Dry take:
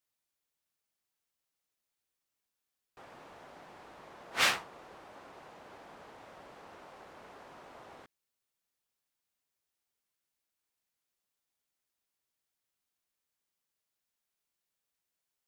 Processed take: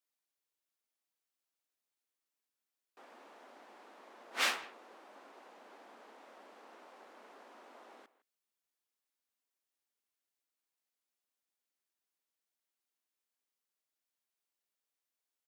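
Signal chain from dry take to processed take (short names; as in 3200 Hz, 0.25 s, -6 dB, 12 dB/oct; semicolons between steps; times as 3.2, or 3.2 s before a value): brick-wall FIR high-pass 200 Hz; speakerphone echo 0.16 s, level -17 dB; gain -4.5 dB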